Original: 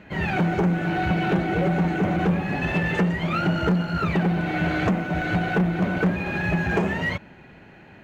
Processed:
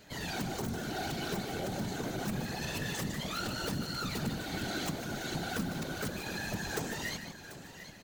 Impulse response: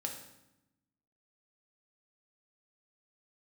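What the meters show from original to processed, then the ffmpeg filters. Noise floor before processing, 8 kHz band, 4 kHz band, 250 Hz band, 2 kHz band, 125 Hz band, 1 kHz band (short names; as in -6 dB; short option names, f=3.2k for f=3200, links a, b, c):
-48 dBFS, n/a, -1.0 dB, -14.5 dB, -13.0 dB, -15.5 dB, -13.0 dB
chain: -filter_complex "[0:a]highpass=f=110:p=1,asplit=2[a][b];[b]acompressor=threshold=-32dB:ratio=5,volume=-2dB[c];[a][c]amix=inputs=2:normalize=0,aexciter=amount=13.1:drive=3.2:freq=3.7k,aeval=exprs='(mod(3.35*val(0)+1,2)-1)/3.35':c=same,asplit=2[d][e];[e]adelay=151.6,volume=-9dB,highshelf=f=4k:g=-3.41[f];[d][f]amix=inputs=2:normalize=0,asoftclip=type=tanh:threshold=-13dB,asplit=2[g][h];[h]aecho=0:1:740|1480|2220|2960:0.237|0.0925|0.0361|0.0141[i];[g][i]amix=inputs=2:normalize=0,afftfilt=real='hypot(re,im)*cos(2*PI*random(0))':imag='hypot(re,im)*sin(2*PI*random(1))':win_size=512:overlap=0.75,volume=-8.5dB"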